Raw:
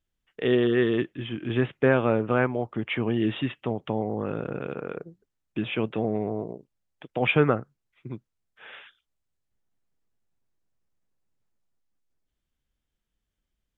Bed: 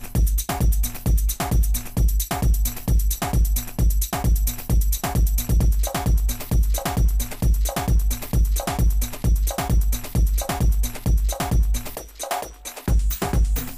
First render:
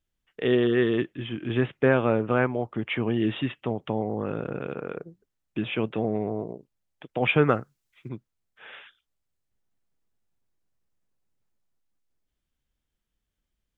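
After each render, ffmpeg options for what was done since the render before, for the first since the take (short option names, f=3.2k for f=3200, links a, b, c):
-filter_complex "[0:a]asettb=1/sr,asplit=3[a][b][c];[a]atrim=end=7.494[d];[b]atrim=start=7.49:end=8.09,asetpts=PTS-STARTPTS,afade=t=in:d=0.004:c=qsin,afade=t=out:st=0.596:d=0.004:c=qsin,highshelf=f=2.2k:g=10.5[e];[c]atrim=start=8.086[f];[d][e]acrossfade=d=0.004:c1=hsin:c2=qsin[g];[g][f]acrossfade=d=0.004:c1=qsin:c2=hsin"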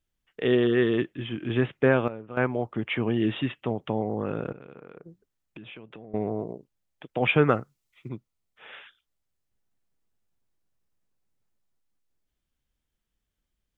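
-filter_complex "[0:a]asettb=1/sr,asplit=3[a][b][c];[a]atrim=end=4.524[d];[b]atrim=start=4.52:end=6.14,asetpts=PTS-STARTPTS,afade=t=in:d=0.004:c=qsin,afade=t=out:st=1.616:d=0.004:c=qsin,acompressor=threshold=-40dB:ratio=12:attack=3.2:release=140:knee=1:detection=peak[e];[c]atrim=start=6.136[f];[d][e]acrossfade=d=0.004:c1=hsin:c2=qsin[g];[g][f]acrossfade=d=0.004:c1=qsin:c2=hsin,asettb=1/sr,asplit=3[h][i][j];[h]atrim=end=7.544[k];[i]atrim=start=7.54:end=8.7,asetpts=PTS-STARTPTS,afade=t=in:d=0.004:c=qsin,afade=t=out:st=1.156:d=0.004:c=qsin,bandreject=f=1.6k:w=7.8[l];[j]atrim=start=8.696[m];[k][l]acrossfade=d=0.004:c1=hsin:c2=qsin[n];[n][m]acrossfade=d=0.004:c1=qsin:c2=hsin,asplit=3[o][p][q];[o]atrim=end=2.08,asetpts=PTS-STARTPTS,afade=t=out:st=1.84:d=0.24:c=log:silence=0.177828[r];[p]atrim=start=2.08:end=2.37,asetpts=PTS-STARTPTS,volume=-15dB[s];[q]atrim=start=2.37,asetpts=PTS-STARTPTS,afade=t=in:d=0.24:c=log:silence=0.177828[t];[r][s][t]concat=n=3:v=0:a=1"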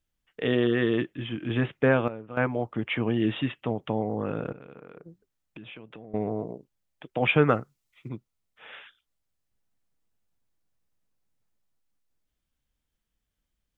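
-af "bandreject=f=380:w=12"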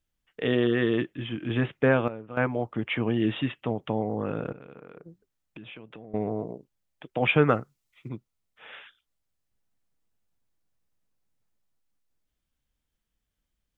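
-af anull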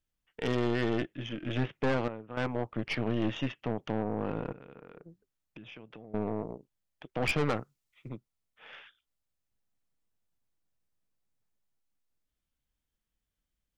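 -af "aeval=exprs='(tanh(15.8*val(0)+0.75)-tanh(0.75))/15.8':c=same"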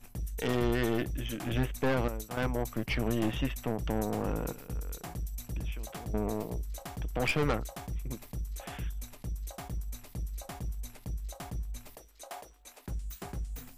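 -filter_complex "[1:a]volume=-18dB[a];[0:a][a]amix=inputs=2:normalize=0"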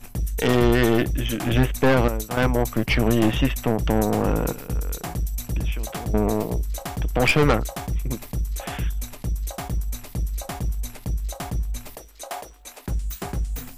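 -af "volume=11dB"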